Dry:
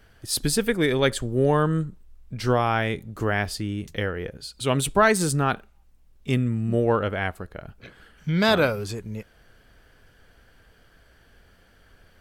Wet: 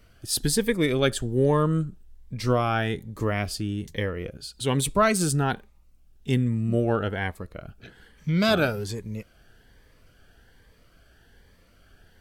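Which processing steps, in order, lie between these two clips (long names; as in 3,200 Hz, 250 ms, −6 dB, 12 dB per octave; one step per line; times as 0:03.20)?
phaser whose notches keep moving one way rising 1.2 Hz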